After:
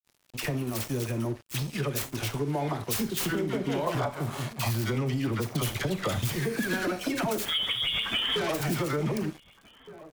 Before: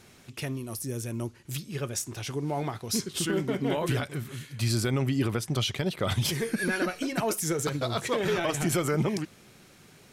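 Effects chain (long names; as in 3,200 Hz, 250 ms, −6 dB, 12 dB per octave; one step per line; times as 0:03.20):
stylus tracing distortion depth 0.45 ms
all-pass dispersion lows, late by 61 ms, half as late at 910 Hz
0:07.45–0:08.36: voice inversion scrambler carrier 3,500 Hz
convolution reverb RT60 0.35 s, pre-delay 28 ms, DRR 11 dB
harmonic generator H 5 −21 dB, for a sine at −13 dBFS
dead-zone distortion −44.5 dBFS
0:03.87–0:04.71: flat-topped bell 840 Hz +12.5 dB 1.3 octaves
slap from a distant wall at 260 metres, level −24 dB
downward compressor, threshold −31 dBFS, peak gain reduction 12 dB
level +5 dB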